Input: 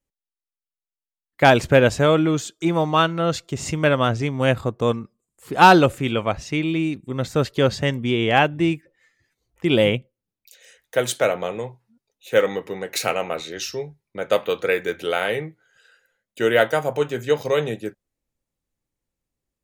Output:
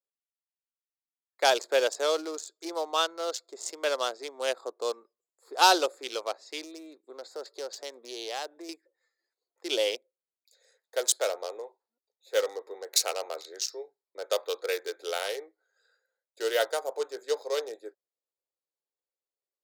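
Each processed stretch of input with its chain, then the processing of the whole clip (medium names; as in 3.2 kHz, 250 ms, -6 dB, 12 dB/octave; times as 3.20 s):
6.64–8.69 s: compression 3:1, threshold -23 dBFS + loudspeaker Doppler distortion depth 0.13 ms
whole clip: local Wiener filter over 15 samples; steep high-pass 390 Hz 36 dB/octave; resonant high shelf 3.3 kHz +12 dB, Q 1.5; trim -8.5 dB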